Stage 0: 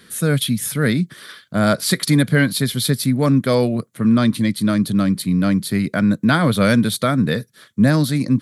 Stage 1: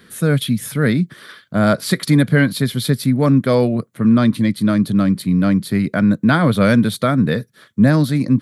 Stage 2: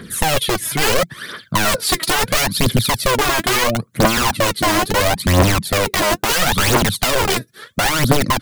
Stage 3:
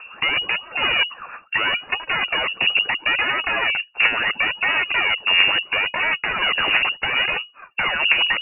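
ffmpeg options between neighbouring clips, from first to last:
-af "equalizer=f=8700:t=o:w=2.6:g=-7.5,volume=1.26"
-af "aeval=exprs='(mod(4.47*val(0)+1,2)-1)/4.47':c=same,acompressor=threshold=0.0501:ratio=3,aphaser=in_gain=1:out_gain=1:delay=3.2:decay=0.66:speed=0.74:type=triangular,volume=2.24"
-af "lowpass=f=2500:t=q:w=0.5098,lowpass=f=2500:t=q:w=0.6013,lowpass=f=2500:t=q:w=0.9,lowpass=f=2500:t=q:w=2.563,afreqshift=-2900,volume=0.668"

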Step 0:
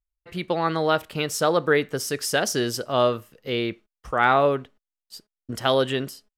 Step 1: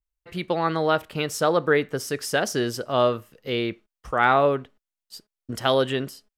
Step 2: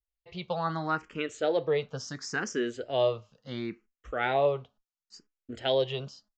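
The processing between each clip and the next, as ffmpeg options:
-af "adynamicequalizer=threshold=0.0126:dfrequency=2900:dqfactor=0.7:tfrequency=2900:tqfactor=0.7:attack=5:release=100:ratio=0.375:range=2.5:mode=cutabove:tftype=highshelf"
-filter_complex "[0:a]flanger=delay=4.2:depth=2.9:regen=-80:speed=0.35:shape=triangular,aresample=16000,aresample=44100,asplit=2[s0][s1];[s1]afreqshift=0.72[s2];[s0][s2]amix=inputs=2:normalize=1"

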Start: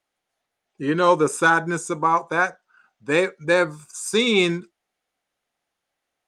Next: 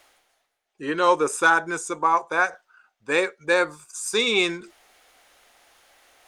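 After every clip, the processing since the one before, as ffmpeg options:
-af "equalizer=f=160:w=0.81:g=-13,areverse,acompressor=mode=upward:threshold=0.0141:ratio=2.5,areverse"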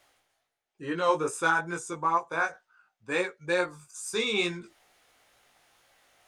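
-af "flanger=delay=16.5:depth=2.9:speed=2.2,equalizer=f=130:w=1.5:g=11,volume=0.631"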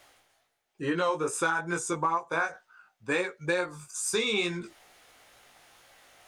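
-af "acompressor=threshold=0.0282:ratio=6,volume=2.11"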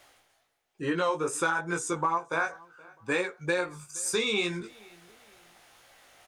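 -filter_complex "[0:a]asplit=2[s0][s1];[s1]adelay=472,lowpass=f=3600:p=1,volume=0.0631,asplit=2[s2][s3];[s3]adelay=472,lowpass=f=3600:p=1,volume=0.37[s4];[s0][s2][s4]amix=inputs=3:normalize=0"

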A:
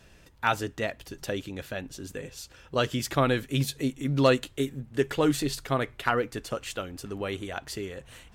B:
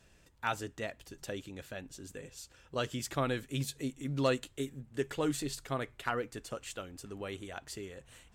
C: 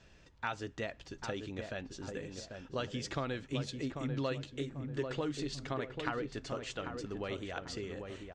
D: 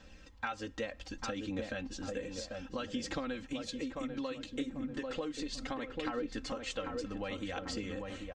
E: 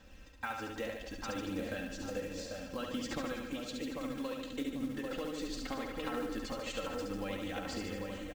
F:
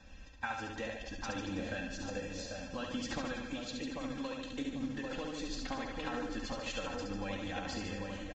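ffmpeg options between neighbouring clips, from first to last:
-af "equalizer=f=7700:w=2.2:g=5.5,volume=0.376"
-filter_complex "[0:a]lowpass=f=6000:w=0.5412,lowpass=f=6000:w=1.3066,acompressor=threshold=0.0126:ratio=3,asplit=2[s0][s1];[s1]adelay=792,lowpass=f=1200:p=1,volume=0.562,asplit=2[s2][s3];[s3]adelay=792,lowpass=f=1200:p=1,volume=0.41,asplit=2[s4][s5];[s5]adelay=792,lowpass=f=1200:p=1,volume=0.41,asplit=2[s6][s7];[s7]adelay=792,lowpass=f=1200:p=1,volume=0.41,asplit=2[s8][s9];[s9]adelay=792,lowpass=f=1200:p=1,volume=0.41[s10];[s2][s4][s6][s8][s10]amix=inputs=5:normalize=0[s11];[s0][s11]amix=inputs=2:normalize=0,volume=1.41"
-af "aecho=1:1:3.8:0.85,acompressor=threshold=0.0158:ratio=5,aphaser=in_gain=1:out_gain=1:delay=2.2:decay=0.24:speed=0.65:type=triangular,volume=1.19"
-filter_complex "[0:a]equalizer=f=4900:t=o:w=0.77:g=-2.5,acrusher=bits=5:mode=log:mix=0:aa=0.000001,asplit=2[s0][s1];[s1]aecho=0:1:70|147|231.7|324.9|427.4:0.631|0.398|0.251|0.158|0.1[s2];[s0][s2]amix=inputs=2:normalize=0,volume=0.794"
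-af "aecho=1:1:1.2:0.34" -ar 16000 -c:a libvorbis -b:a 32k

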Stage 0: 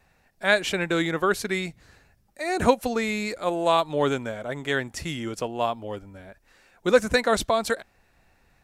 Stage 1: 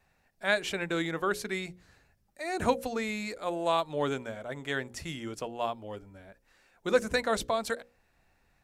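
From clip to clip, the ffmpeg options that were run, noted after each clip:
-af "bandreject=f=60:t=h:w=6,bandreject=f=120:t=h:w=6,bandreject=f=180:t=h:w=6,bandreject=f=240:t=h:w=6,bandreject=f=300:t=h:w=6,bandreject=f=360:t=h:w=6,bandreject=f=420:t=h:w=6,bandreject=f=480:t=h:w=6,bandreject=f=540:t=h:w=6,volume=0.473"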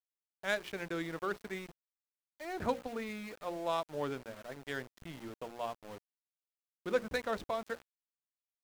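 -af "adynamicsmooth=sensitivity=4:basefreq=1500,aeval=exprs='val(0)*gte(abs(val(0)),0.00944)':c=same,volume=0.473"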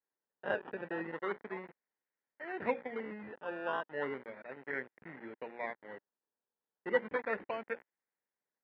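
-af "acrusher=samples=16:mix=1:aa=0.000001:lfo=1:lforange=9.6:lforate=0.35,highpass=270,equalizer=f=310:t=q:w=4:g=-4,equalizer=f=670:t=q:w=4:g=-6,equalizer=f=1200:t=q:w=4:g=-8,equalizer=f=1900:t=q:w=4:g=6,lowpass=f=2100:w=0.5412,lowpass=f=2100:w=1.3066,volume=1.33"

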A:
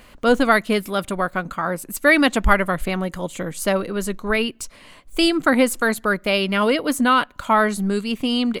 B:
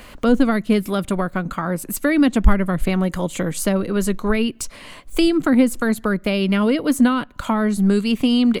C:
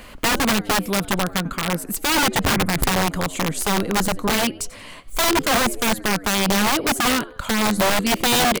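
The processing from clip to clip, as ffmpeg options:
-filter_complex "[0:a]acrossover=split=330[s0][s1];[s1]acompressor=threshold=0.0316:ratio=5[s2];[s0][s2]amix=inputs=2:normalize=0,volume=2.11"
-filter_complex "[0:a]asplit=4[s0][s1][s2][s3];[s1]adelay=90,afreqshift=91,volume=0.0944[s4];[s2]adelay=180,afreqshift=182,volume=0.0417[s5];[s3]adelay=270,afreqshift=273,volume=0.0182[s6];[s0][s4][s5][s6]amix=inputs=4:normalize=0,aeval=exprs='(mod(4.73*val(0)+1,2)-1)/4.73':c=same"

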